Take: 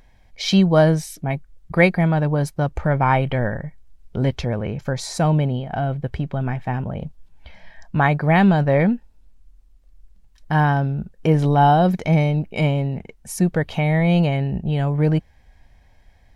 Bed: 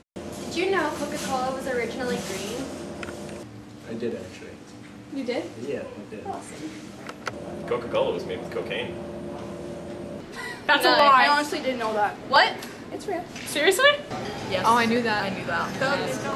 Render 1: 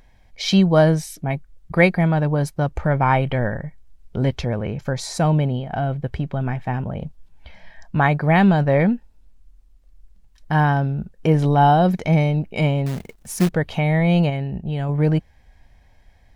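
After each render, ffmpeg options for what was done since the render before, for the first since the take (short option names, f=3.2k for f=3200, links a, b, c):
-filter_complex "[0:a]asettb=1/sr,asplit=3[a][b][c];[a]atrim=end=12.864[d];[b]atrim=start=12.86:end=13.49,asetpts=PTS-STARTPTS,afade=t=in:d=0.004:c=qsin,afade=t=out:st=0.626:d=0.004:c=qsin,acrusher=bits=3:mode=log:mix=0:aa=0.000001[e];[c]atrim=start=13.486[f];[d][e]acrossfade=d=0.004:c1=hsin:c2=qsin[g];[g][f]acrossfade=d=0.004:c1=qsin:c2=hsin,asplit=3[h][i][j];[h]atrim=end=14.302[k];[i]atrim=start=14.298:end=14.892,asetpts=PTS-STARTPTS,volume=-3.5dB[l];[j]atrim=start=14.888[m];[k][l]acrossfade=d=0.004:c1=hsin:c2=hsin[n];[n][m]acrossfade=d=0.004:c1=hsin:c2=hsin"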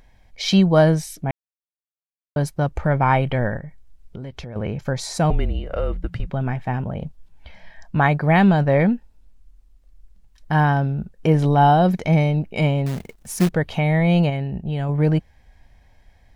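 -filter_complex "[0:a]asettb=1/sr,asplit=3[a][b][c];[a]atrim=end=3.584[d];[b]atrim=start=3.58:end=4.56,asetpts=PTS-STARTPTS,afade=t=in:d=0.004:c=qsin,afade=t=out:st=0.976:d=0.004:c=qsin,acompressor=threshold=-30dB:ratio=6:attack=3.2:release=140:knee=1:detection=peak[e];[c]atrim=start=4.556[f];[d][e]acrossfade=d=0.004:c1=hsin:c2=qsin[g];[g][f]acrossfade=d=0.004:c1=qsin:c2=hsin,asettb=1/sr,asplit=3[h][i][j];[h]atrim=end=5.304[k];[i]atrim=start=5.3:end=6.3,asetpts=PTS-STARTPTS,afade=t=in:d=0.004:c=qsin,afade=t=out:st=0.996:d=0.004:c=qsin,afreqshift=-180[l];[j]atrim=start=6.296[m];[k][l]acrossfade=d=0.004:c1=hsin:c2=qsin[n];[n][m]acrossfade=d=0.004:c1=qsin:c2=hsin,asplit=3[o][p][q];[o]atrim=end=1.31,asetpts=PTS-STARTPTS,afade=t=out:st=1.306:d=0.004:c=hsin[r];[p]atrim=start=1.31:end=2.36,asetpts=PTS-STARTPTS,volume=0[s];[q]atrim=start=2.36,asetpts=PTS-STARTPTS,afade=t=in:d=0.004:c=hsin[t];[r][s][t]concat=n=3:v=0:a=1"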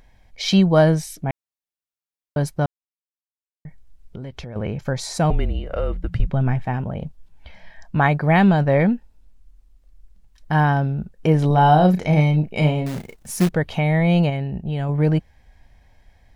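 -filter_complex "[0:a]asettb=1/sr,asplit=3[a][b][c];[a]atrim=end=6.074[d];[b]atrim=start=6.07:end=6.65,asetpts=PTS-STARTPTS,afade=t=in:d=0.004:c=qsin,afade=t=out:st=0.576:d=0.004:c=qsin,lowshelf=f=160:g=8[e];[c]atrim=start=6.646[f];[d][e]acrossfade=d=0.004:c1=hsin:c2=qsin[g];[g][f]acrossfade=d=0.004:c1=qsin:c2=hsin,asettb=1/sr,asplit=3[h][i][j];[h]atrim=end=11.474[k];[i]atrim=start=11.47:end=13.4,asetpts=PTS-STARTPTS,afade=t=in:d=0.004:c=qsin,afade=t=out:st=1.926:d=0.004:c=qsin,asplit=2[l][m];[m]adelay=33,volume=-7dB[n];[l][n]amix=inputs=2:normalize=0,atrim=end_sample=85113[o];[j]atrim=start=13.396[p];[k][o]acrossfade=d=0.004:c1=hsin:c2=qsin[q];[q][p]acrossfade=d=0.004:c1=qsin:c2=hsin,asplit=3[r][s][t];[r]atrim=end=2.66,asetpts=PTS-STARTPTS,afade=t=out:st=2.656:d=0.004:c=hsin[u];[s]atrim=start=2.66:end=3.65,asetpts=PTS-STARTPTS,volume=0[v];[t]atrim=start=3.65,asetpts=PTS-STARTPTS,afade=t=in:d=0.004:c=hsin[w];[u][v][w]concat=n=3:v=0:a=1"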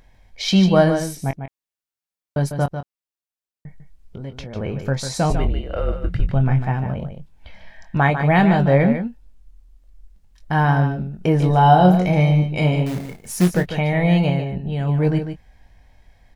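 -filter_complex "[0:a]asplit=2[a][b];[b]adelay=22,volume=-9dB[c];[a][c]amix=inputs=2:normalize=0,asplit=2[d][e];[e]aecho=0:1:148:0.376[f];[d][f]amix=inputs=2:normalize=0"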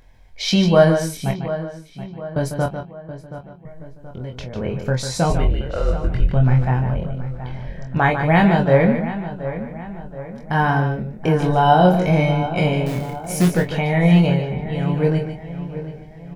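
-filter_complex "[0:a]asplit=2[a][b];[b]adelay=24,volume=-5dB[c];[a][c]amix=inputs=2:normalize=0,asplit=2[d][e];[e]adelay=726,lowpass=f=2.4k:p=1,volume=-12.5dB,asplit=2[f][g];[g]adelay=726,lowpass=f=2.4k:p=1,volume=0.5,asplit=2[h][i];[i]adelay=726,lowpass=f=2.4k:p=1,volume=0.5,asplit=2[j][k];[k]adelay=726,lowpass=f=2.4k:p=1,volume=0.5,asplit=2[l][m];[m]adelay=726,lowpass=f=2.4k:p=1,volume=0.5[n];[d][f][h][j][l][n]amix=inputs=6:normalize=0"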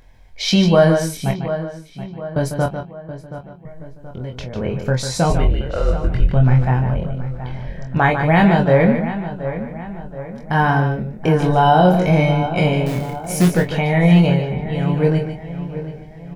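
-af "volume=2dB,alimiter=limit=-3dB:level=0:latency=1"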